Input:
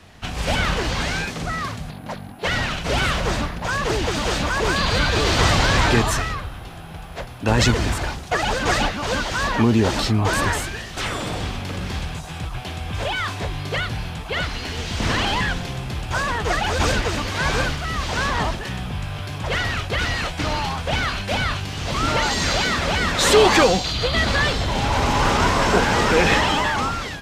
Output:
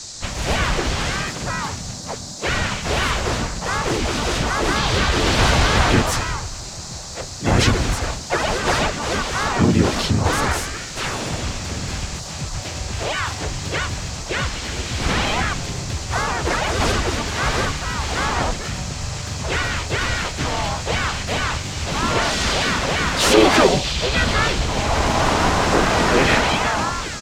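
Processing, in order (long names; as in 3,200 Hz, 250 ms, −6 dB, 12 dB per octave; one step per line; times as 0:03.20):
pitch-shifted copies added −5 semitones −3 dB, −4 semitones −3 dB, +4 semitones −6 dB
noise in a band 3,900–7,700 Hz −33 dBFS
level −2.5 dB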